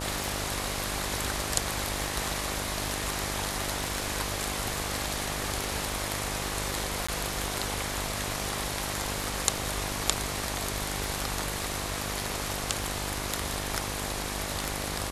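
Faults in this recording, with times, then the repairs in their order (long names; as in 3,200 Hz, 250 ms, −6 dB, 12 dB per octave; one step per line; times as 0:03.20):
mains buzz 50 Hz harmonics 24 −37 dBFS
scratch tick 33 1/3 rpm
0:07.07–0:07.08: drop-out 15 ms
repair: click removal
hum removal 50 Hz, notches 24
repair the gap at 0:07.07, 15 ms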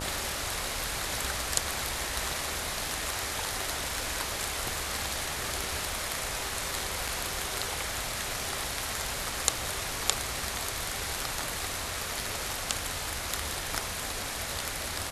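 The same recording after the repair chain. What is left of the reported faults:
none of them is left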